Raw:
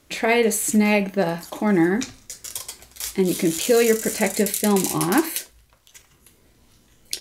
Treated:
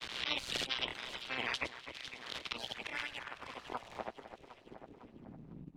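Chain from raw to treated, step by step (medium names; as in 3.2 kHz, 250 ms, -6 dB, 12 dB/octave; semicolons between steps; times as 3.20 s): spectral peaks clipped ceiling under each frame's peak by 28 dB; reverb removal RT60 0.63 s; compression 5:1, threshold -33 dBFS, peak gain reduction 18 dB; slow attack 414 ms; low-pass sweep 2.8 kHz -> 140 Hz, 3.15–6.80 s; AM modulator 99 Hz, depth 75%; granulator; echo whose repeats swap between lows and highs 315 ms, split 1.7 kHz, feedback 57%, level -13 dB; tape speed +25%; three bands compressed up and down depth 70%; trim +10 dB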